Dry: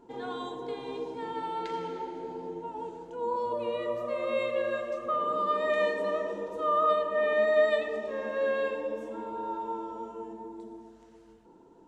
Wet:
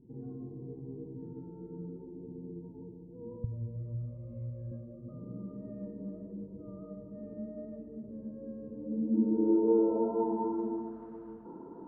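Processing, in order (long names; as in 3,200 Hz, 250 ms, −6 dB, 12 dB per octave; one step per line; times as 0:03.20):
parametric band 320 Hz +13.5 dB 2.7 octaves, from 0:03.44 88 Hz, from 0:04.71 220 Hz
low-pass filter sweep 120 Hz → 1,200 Hz, 0:08.65–0:10.54
level −1.5 dB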